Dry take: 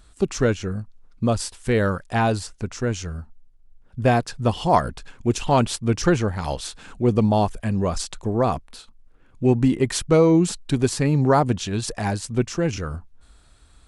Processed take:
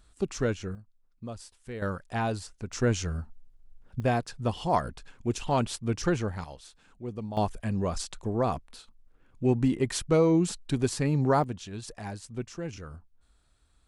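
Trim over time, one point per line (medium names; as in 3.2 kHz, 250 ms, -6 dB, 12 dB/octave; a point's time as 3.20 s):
-8 dB
from 0.75 s -18.5 dB
from 1.82 s -9 dB
from 2.73 s -1 dB
from 4.00 s -8 dB
from 6.44 s -18 dB
from 7.37 s -6.5 dB
from 11.44 s -13.5 dB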